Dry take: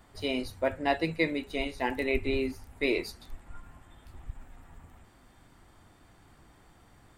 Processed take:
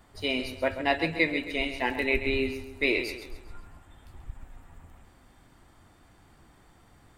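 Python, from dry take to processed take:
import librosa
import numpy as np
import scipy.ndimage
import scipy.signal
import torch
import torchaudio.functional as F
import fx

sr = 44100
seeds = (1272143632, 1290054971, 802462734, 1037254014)

y = fx.echo_feedback(x, sr, ms=134, feedback_pct=45, wet_db=-10.5)
y = fx.dynamic_eq(y, sr, hz=2500.0, q=0.95, threshold_db=-47.0, ratio=4.0, max_db=6)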